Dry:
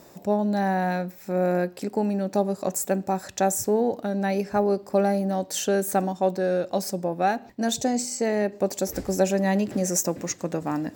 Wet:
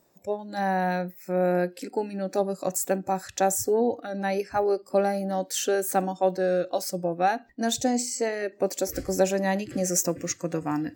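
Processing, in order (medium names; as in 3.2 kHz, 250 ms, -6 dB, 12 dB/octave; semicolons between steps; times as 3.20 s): spectral noise reduction 16 dB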